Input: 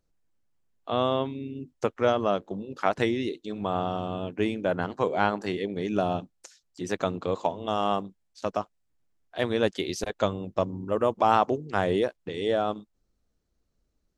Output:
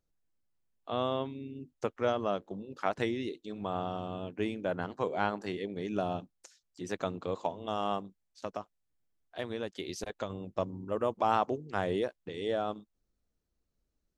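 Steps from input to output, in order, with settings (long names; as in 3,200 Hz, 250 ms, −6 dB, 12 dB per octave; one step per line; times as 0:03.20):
0:07.97–0:10.30: downward compressor 6 to 1, threshold −26 dBFS, peak gain reduction 8.5 dB
level −6.5 dB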